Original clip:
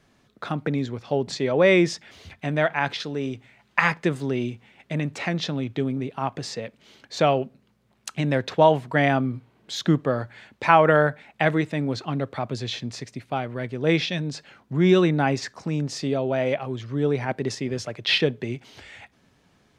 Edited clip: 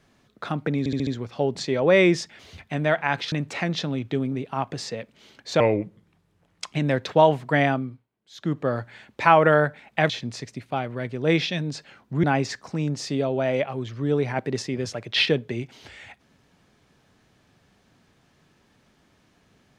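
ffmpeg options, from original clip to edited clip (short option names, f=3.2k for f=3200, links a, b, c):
-filter_complex "[0:a]asplit=12[a][b][c][d][e][f][g][h][i][j][k][l];[a]atrim=end=0.862[m];[b]atrim=start=0.788:end=0.862[n];[c]atrim=start=0.788:end=0.862[o];[d]atrim=start=0.788:end=0.862[p];[e]atrim=start=0.788:end=3.042[q];[f]atrim=start=4.968:end=7.254[r];[g]atrim=start=7.25:end=8.15,asetpts=PTS-STARTPTS,asetrate=35280,aresample=44100,atrim=end_sample=49612,asetpts=PTS-STARTPTS[s];[h]atrim=start=8.146:end=9.49,asetpts=PTS-STARTPTS,afade=t=out:st=0.904:d=0.44:silence=0.0749894[t];[i]atrim=start=9.49:end=9.72,asetpts=PTS-STARTPTS,volume=-22.5dB[u];[j]atrim=start=9.72:end=11.522,asetpts=PTS-STARTPTS,afade=t=in:d=0.44:silence=0.0749894[v];[k]atrim=start=12.688:end=14.832[w];[l]atrim=start=15.158[x];[m][n]acrossfade=d=0.004:c1=hsin:c2=hsin[y];[y][o]acrossfade=d=0.004:c1=hsin:c2=hsin[z];[z][p]acrossfade=d=0.004:c1=hsin:c2=hsin[aa];[aa][q]acrossfade=d=0.004:c1=hsin:c2=hsin[ab];[ab][r]acrossfade=d=0.004:c1=hsin:c2=hsin[ac];[ac][s]acrossfade=d=0.004:c1=hsin:c2=hsin[ad];[t][u][v]concat=n=3:v=0:a=1[ae];[ad][ae]acrossfade=d=0.004:c1=hsin:c2=hsin[af];[af][w]acrossfade=d=0.004:c1=hsin:c2=hsin[ag];[ag][x]acrossfade=d=0.004:c1=hsin:c2=hsin"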